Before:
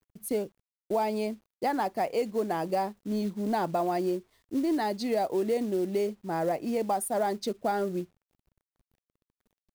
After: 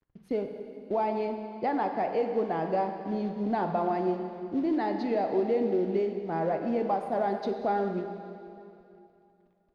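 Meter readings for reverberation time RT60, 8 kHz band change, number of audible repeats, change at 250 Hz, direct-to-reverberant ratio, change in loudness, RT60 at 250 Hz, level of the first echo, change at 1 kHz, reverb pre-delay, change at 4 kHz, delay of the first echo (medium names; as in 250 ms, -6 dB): 2.7 s, under -25 dB, no echo, +0.5 dB, 4.5 dB, +0.5 dB, 2.7 s, no echo, +0.5 dB, 4 ms, -7.5 dB, no echo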